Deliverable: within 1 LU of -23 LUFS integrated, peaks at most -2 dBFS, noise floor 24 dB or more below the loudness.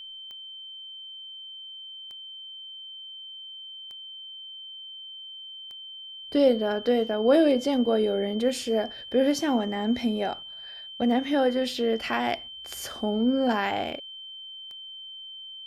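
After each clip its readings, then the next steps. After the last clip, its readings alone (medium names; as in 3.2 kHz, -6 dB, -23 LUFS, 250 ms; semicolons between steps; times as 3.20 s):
clicks found 9; steady tone 3.1 kHz; tone level -39 dBFS; loudness -25.5 LUFS; peak level -9.5 dBFS; loudness target -23.0 LUFS
-> de-click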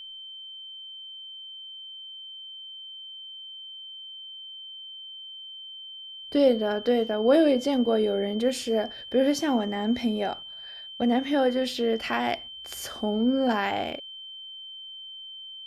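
clicks found 0; steady tone 3.1 kHz; tone level -39 dBFS
-> band-stop 3.1 kHz, Q 30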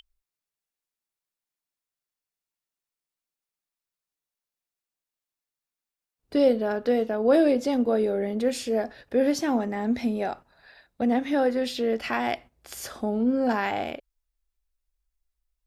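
steady tone not found; loudness -25.5 LUFS; peak level -10.0 dBFS; loudness target -23.0 LUFS
-> trim +2.5 dB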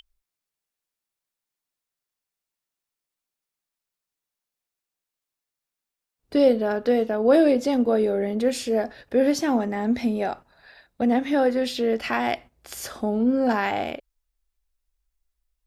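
loudness -23.0 LUFS; peak level -7.5 dBFS; noise floor -87 dBFS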